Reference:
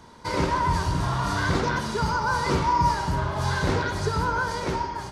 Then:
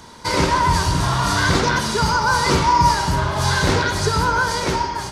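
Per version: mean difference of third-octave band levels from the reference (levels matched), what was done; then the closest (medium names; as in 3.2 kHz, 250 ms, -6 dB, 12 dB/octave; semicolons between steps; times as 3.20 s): 2.5 dB: treble shelf 2.4 kHz +8 dB; trim +5.5 dB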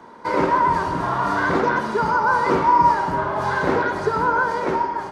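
5.5 dB: three-band isolator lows -19 dB, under 210 Hz, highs -15 dB, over 2.1 kHz; trim +7.5 dB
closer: first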